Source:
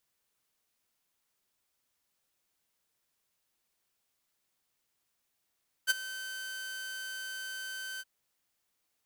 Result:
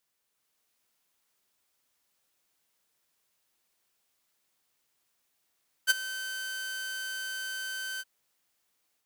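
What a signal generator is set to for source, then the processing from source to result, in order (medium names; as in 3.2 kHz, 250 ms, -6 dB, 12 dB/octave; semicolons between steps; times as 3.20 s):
ADSR saw 1.54 kHz, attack 33 ms, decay 22 ms, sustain -16.5 dB, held 2.13 s, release 39 ms -19 dBFS
bass shelf 150 Hz -6 dB; level rider gain up to 4 dB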